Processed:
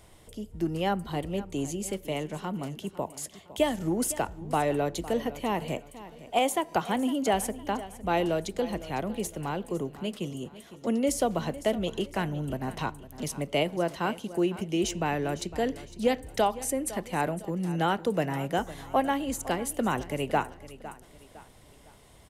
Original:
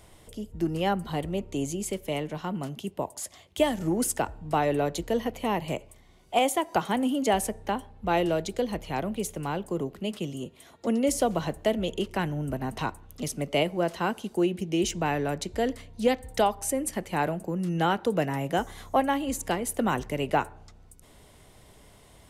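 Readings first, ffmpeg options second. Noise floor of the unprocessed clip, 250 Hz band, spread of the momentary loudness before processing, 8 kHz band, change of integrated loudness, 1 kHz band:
-55 dBFS, -1.5 dB, 9 LU, -1.5 dB, -1.5 dB, -1.5 dB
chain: -af "aecho=1:1:507|1014|1521:0.158|0.0618|0.0241,volume=-1.5dB"

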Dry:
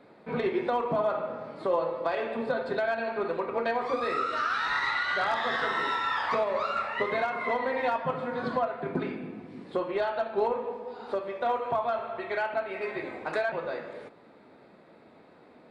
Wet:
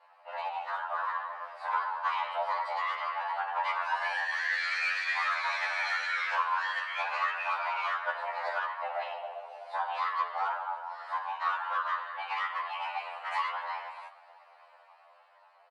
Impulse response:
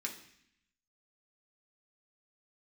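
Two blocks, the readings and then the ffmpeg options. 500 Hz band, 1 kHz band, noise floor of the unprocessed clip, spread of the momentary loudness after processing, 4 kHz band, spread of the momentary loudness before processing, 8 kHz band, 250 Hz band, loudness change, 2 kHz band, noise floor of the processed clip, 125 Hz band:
-14.5 dB, 0.0 dB, -55 dBFS, 9 LU, -0.5 dB, 8 LU, n/a, under -40 dB, -2.5 dB, +1.0 dB, -60 dBFS, under -40 dB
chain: -filter_complex "[0:a]equalizer=f=4.8k:w=7.2:g=-5.5,dynaudnorm=f=270:g=9:m=5.5dB,aeval=exprs='(tanh(6.31*val(0)+0.05)-tanh(0.05))/6.31':c=same,afftfilt=real='hypot(re,im)*cos(2*PI*random(0))':imag='hypot(re,im)*sin(2*PI*random(1))':win_size=512:overlap=0.75,afreqshift=440,asplit=5[a][b][c][d][e];[b]adelay=143,afreqshift=87,volume=-21dB[f];[c]adelay=286,afreqshift=174,volume=-27dB[g];[d]adelay=429,afreqshift=261,volume=-33dB[h];[e]adelay=572,afreqshift=348,volume=-39.1dB[i];[a][f][g][h][i]amix=inputs=5:normalize=0,afftfilt=real='re*2*eq(mod(b,4),0)':imag='im*2*eq(mod(b,4),0)':win_size=2048:overlap=0.75,volume=1.5dB"

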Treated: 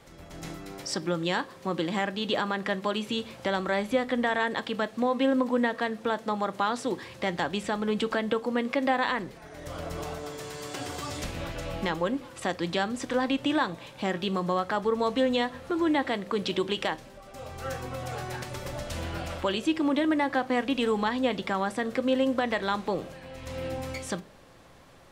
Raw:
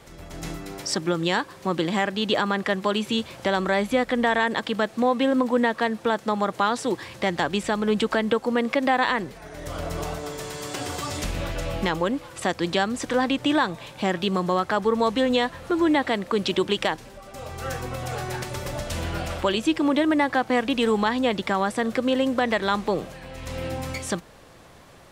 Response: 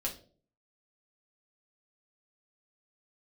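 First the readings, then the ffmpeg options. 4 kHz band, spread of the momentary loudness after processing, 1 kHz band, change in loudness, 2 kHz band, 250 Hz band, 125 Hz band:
-5.0 dB, 11 LU, -5.0 dB, -4.5 dB, -5.0 dB, -4.5 dB, -5.0 dB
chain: -filter_complex "[0:a]asplit=2[a][b];[1:a]atrim=start_sample=2205,lowpass=7.2k[c];[b][c]afir=irnorm=-1:irlink=0,volume=-11.5dB[d];[a][d]amix=inputs=2:normalize=0,volume=-6.5dB"

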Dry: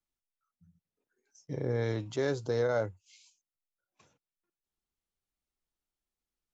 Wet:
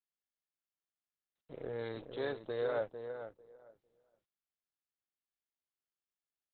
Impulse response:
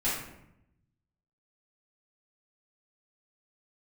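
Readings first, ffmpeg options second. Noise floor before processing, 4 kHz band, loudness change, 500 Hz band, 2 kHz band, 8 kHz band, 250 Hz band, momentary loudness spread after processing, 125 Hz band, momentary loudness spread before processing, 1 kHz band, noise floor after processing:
under -85 dBFS, -5.5 dB, -7.0 dB, -5.5 dB, -6.0 dB, n/a, -10.0 dB, 12 LU, -16.5 dB, 9 LU, -4.5 dB, under -85 dBFS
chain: -filter_complex "[0:a]tiltshelf=f=1.4k:g=-4,aeval=exprs='sgn(val(0))*max(abs(val(0))-0.00376,0)':c=same,equalizer=f=125:t=o:w=1:g=-10,equalizer=f=250:t=o:w=1:g=-5,equalizer=f=2k:t=o:w=1:g=-6,asplit=2[a][b];[b]adelay=450,lowpass=f=1.6k:p=1,volume=-7dB,asplit=2[c][d];[d]adelay=450,lowpass=f=1.6k:p=1,volume=0.17,asplit=2[e][f];[f]adelay=450,lowpass=f=1.6k:p=1,volume=0.17[g];[c][e][g]amix=inputs=3:normalize=0[h];[a][h]amix=inputs=2:normalize=0" -ar 48000 -c:a libopus -b:a 8k

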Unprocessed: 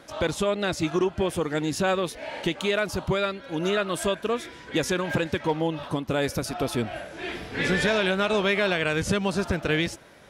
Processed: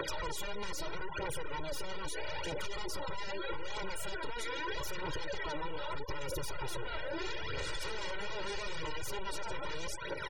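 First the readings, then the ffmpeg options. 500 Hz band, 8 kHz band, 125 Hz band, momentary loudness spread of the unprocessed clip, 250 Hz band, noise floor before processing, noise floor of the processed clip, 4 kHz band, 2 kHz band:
-15.5 dB, -8.0 dB, -16.0 dB, 7 LU, -20.5 dB, -46 dBFS, -39 dBFS, -10.0 dB, -12.5 dB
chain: -filter_complex "[0:a]highpass=f=220:p=1,lowshelf=f=290:g=-2,aeval=exprs='(tanh(56.2*val(0)+0.55)-tanh(0.55))/56.2':c=same,alimiter=level_in=14dB:limit=-24dB:level=0:latency=1:release=109,volume=-14dB,aphaser=in_gain=1:out_gain=1:delay=4.6:decay=0.7:speed=0.79:type=triangular,aeval=exprs='0.0106*(abs(mod(val(0)/0.0106+3,4)-2)-1)':c=same,acrossover=split=460[a][b];[b]acompressor=threshold=-49dB:ratio=2[c];[a][c]amix=inputs=2:normalize=0,aecho=1:1:2.1:0.88,aecho=1:1:742:0.15,acompressor=threshold=-48dB:ratio=3,afftfilt=real='re*gte(hypot(re,im),0.00178)':imag='im*gte(hypot(re,im),0.00178)':win_size=1024:overlap=0.75,volume=13dB"

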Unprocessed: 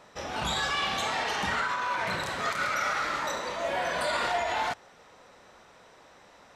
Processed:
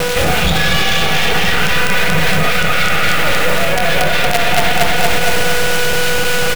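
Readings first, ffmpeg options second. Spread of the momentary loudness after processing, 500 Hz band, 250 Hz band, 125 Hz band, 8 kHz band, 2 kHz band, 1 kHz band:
1 LU, +17.0 dB, +20.5 dB, +24.5 dB, +19.0 dB, +17.0 dB, +12.0 dB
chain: -filter_complex "[0:a]aresample=8000,aresample=44100,equalizer=f=1.2k:t=o:w=2.1:g=-5,acrossover=split=1400[a][b];[a]aeval=exprs='val(0)*(1-0.5/2+0.5/2*cos(2*PI*3.7*n/s))':c=same[c];[b]aeval=exprs='val(0)*(1-0.5/2-0.5/2*cos(2*PI*3.7*n/s))':c=same[d];[c][d]amix=inputs=2:normalize=0,aeval=exprs='val(0)+0.00355*sin(2*PI*490*n/s)':c=same,aecho=1:1:4.1:0.47,acrossover=split=130[e][f];[f]acrusher=bits=5:dc=4:mix=0:aa=0.000001[g];[e][g]amix=inputs=2:normalize=0,aecho=1:1:232|464|696|928|1160|1392|1624:0.631|0.328|0.171|0.0887|0.0461|0.024|0.0125,areverse,acompressor=threshold=-38dB:ratio=6,areverse,equalizer=f=160:t=o:w=0.33:g=11,equalizer=f=250:t=o:w=0.33:g=-11,equalizer=f=1k:t=o:w=0.33:g=-10,equalizer=f=2.5k:t=o:w=0.33:g=3,alimiter=level_in=35dB:limit=-1dB:release=50:level=0:latency=1,volume=-1dB"

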